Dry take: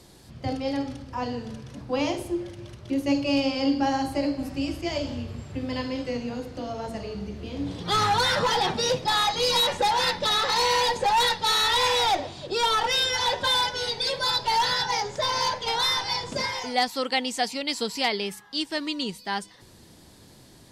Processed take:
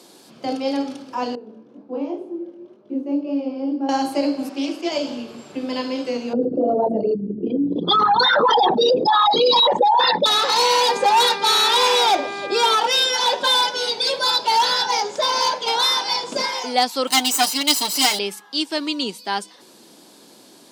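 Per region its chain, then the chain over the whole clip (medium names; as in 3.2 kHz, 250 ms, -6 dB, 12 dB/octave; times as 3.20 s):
1.35–3.89 s: band-pass filter 320 Hz, Q 1.2 + chorus 2 Hz, delay 18.5 ms, depth 7.8 ms
4.49–4.92 s: high-pass 230 Hz 24 dB/octave + treble shelf 9.9 kHz -11.5 dB + loudspeaker Doppler distortion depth 0.13 ms
6.33–10.26 s: resonances exaggerated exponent 3 + level flattener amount 70%
10.88–12.74 s: bass shelf 190 Hz +4.5 dB + mains buzz 400 Hz, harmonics 6, -35 dBFS -1 dB/octave
17.07–18.19 s: comb filter that takes the minimum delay 1 ms + treble shelf 5.1 kHz +11.5 dB + comb 6.7 ms, depth 68%
whole clip: high-pass 230 Hz 24 dB/octave; peaking EQ 1.9 kHz -8 dB 0.25 oct; trim +6 dB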